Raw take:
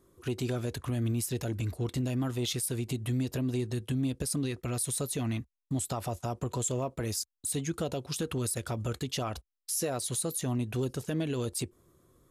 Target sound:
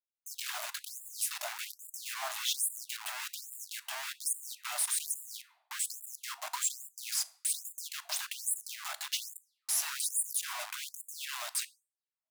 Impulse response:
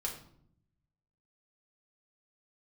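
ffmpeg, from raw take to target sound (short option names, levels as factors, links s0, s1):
-filter_complex "[0:a]acrusher=bits=5:mix=0:aa=0.000001,asplit=2[s0][s1];[1:a]atrim=start_sample=2205,asetrate=37926,aresample=44100[s2];[s1][s2]afir=irnorm=-1:irlink=0,volume=0.237[s3];[s0][s3]amix=inputs=2:normalize=0,afftfilt=real='re*gte(b*sr/1024,580*pow(7100/580,0.5+0.5*sin(2*PI*1.2*pts/sr)))':imag='im*gte(b*sr/1024,580*pow(7100/580,0.5+0.5*sin(2*PI*1.2*pts/sr)))':win_size=1024:overlap=0.75"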